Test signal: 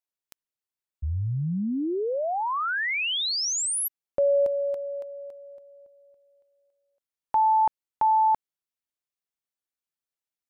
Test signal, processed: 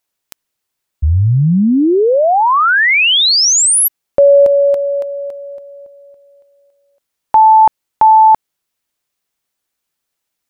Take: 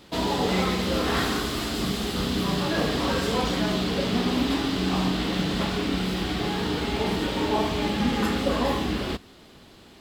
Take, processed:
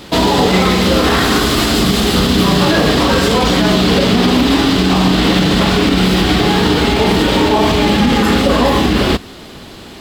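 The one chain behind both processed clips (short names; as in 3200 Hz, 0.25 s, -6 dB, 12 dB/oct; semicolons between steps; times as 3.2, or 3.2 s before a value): maximiser +18.5 dB; gain -2 dB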